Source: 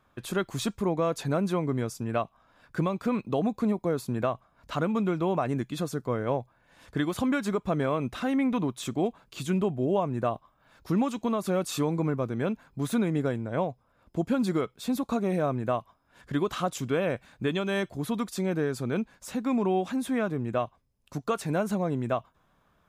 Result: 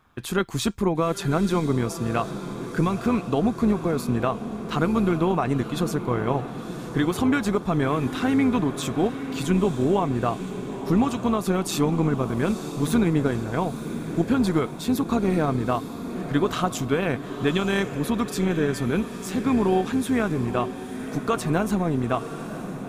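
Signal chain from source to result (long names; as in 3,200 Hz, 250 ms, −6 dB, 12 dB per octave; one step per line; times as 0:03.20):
parametric band 570 Hz −11.5 dB 0.24 octaves
amplitude modulation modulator 160 Hz, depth 30%
on a send: feedback delay with all-pass diffusion 957 ms, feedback 58%, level −10.5 dB
on the sum: level +7.5 dB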